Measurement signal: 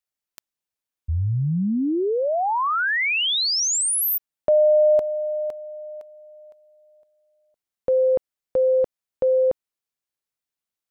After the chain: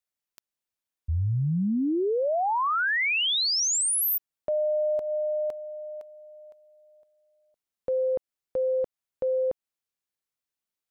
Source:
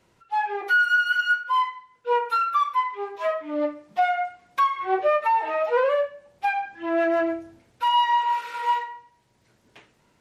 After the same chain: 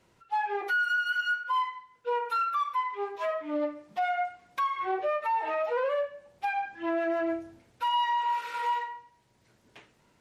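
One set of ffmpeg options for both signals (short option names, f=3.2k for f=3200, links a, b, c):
-af "alimiter=limit=-20dB:level=0:latency=1:release=146,volume=-2dB"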